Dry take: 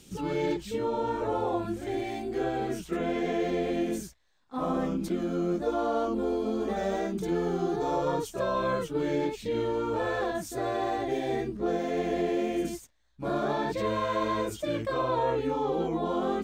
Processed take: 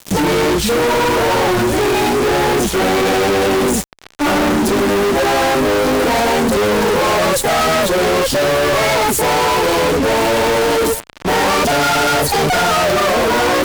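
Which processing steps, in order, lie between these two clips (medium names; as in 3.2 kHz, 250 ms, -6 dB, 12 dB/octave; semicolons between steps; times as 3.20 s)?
gliding tape speed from 102% -> 139%; band-passed feedback delay 872 ms, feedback 42%, band-pass 1.4 kHz, level -22 dB; fuzz box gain 53 dB, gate -47 dBFS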